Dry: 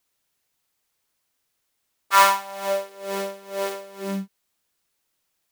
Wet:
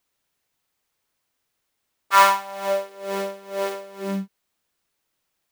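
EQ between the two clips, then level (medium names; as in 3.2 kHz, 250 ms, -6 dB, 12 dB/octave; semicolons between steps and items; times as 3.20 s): peaking EQ 14 kHz -5 dB 2.3 oct; +1.5 dB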